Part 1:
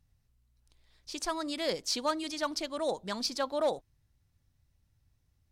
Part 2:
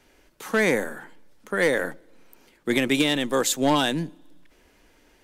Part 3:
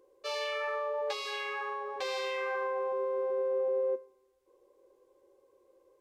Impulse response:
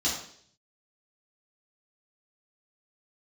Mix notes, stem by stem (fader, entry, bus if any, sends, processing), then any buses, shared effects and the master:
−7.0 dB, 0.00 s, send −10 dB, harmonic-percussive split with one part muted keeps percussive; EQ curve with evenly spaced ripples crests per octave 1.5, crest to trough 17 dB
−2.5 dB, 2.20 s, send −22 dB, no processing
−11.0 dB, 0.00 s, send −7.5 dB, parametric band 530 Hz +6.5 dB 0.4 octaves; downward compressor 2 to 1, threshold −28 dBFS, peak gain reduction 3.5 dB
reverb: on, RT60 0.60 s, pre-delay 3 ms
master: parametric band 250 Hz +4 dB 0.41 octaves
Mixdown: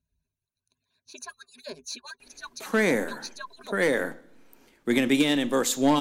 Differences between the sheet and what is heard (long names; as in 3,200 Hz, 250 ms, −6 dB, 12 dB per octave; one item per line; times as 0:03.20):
stem 1: send off
stem 3: muted